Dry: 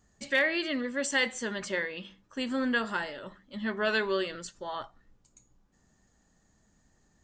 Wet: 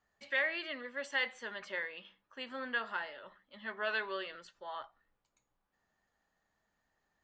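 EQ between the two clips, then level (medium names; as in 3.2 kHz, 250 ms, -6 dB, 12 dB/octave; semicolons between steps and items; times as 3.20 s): three-band isolator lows -15 dB, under 520 Hz, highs -23 dB, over 4.2 kHz; -5.0 dB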